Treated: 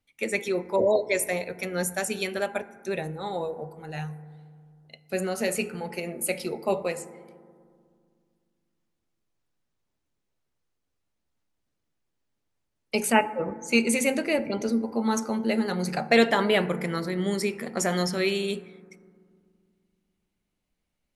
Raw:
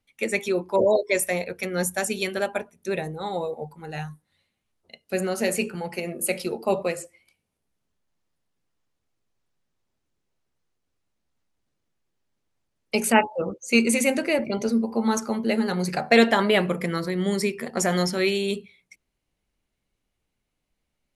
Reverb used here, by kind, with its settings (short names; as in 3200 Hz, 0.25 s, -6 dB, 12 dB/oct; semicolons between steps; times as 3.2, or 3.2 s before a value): FDN reverb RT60 2.1 s, low-frequency decay 1.45×, high-frequency decay 0.25×, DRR 14 dB; gain -2.5 dB